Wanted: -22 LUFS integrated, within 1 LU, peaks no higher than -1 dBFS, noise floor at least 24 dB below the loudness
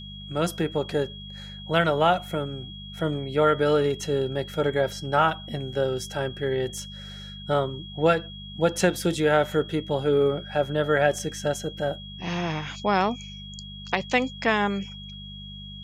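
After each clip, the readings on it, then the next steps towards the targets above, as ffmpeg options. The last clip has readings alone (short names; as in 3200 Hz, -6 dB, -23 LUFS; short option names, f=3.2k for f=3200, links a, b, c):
hum 50 Hz; harmonics up to 200 Hz; hum level -39 dBFS; steady tone 3300 Hz; tone level -41 dBFS; loudness -25.5 LUFS; peak -7.0 dBFS; loudness target -22.0 LUFS
-> -af "bandreject=f=50:t=h:w=4,bandreject=f=100:t=h:w=4,bandreject=f=150:t=h:w=4,bandreject=f=200:t=h:w=4"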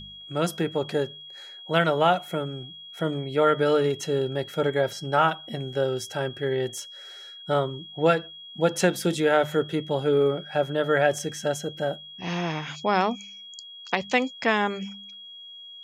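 hum none; steady tone 3300 Hz; tone level -41 dBFS
-> -af "bandreject=f=3.3k:w=30"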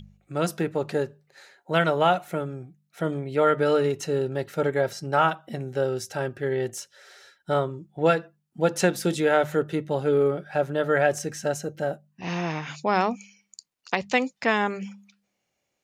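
steady tone none; loudness -25.5 LUFS; peak -7.0 dBFS; loudness target -22.0 LUFS
-> -af "volume=3.5dB"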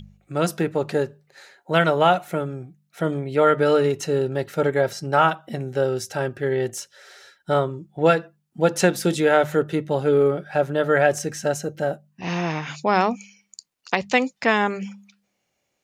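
loudness -22.0 LUFS; peak -3.5 dBFS; noise floor -75 dBFS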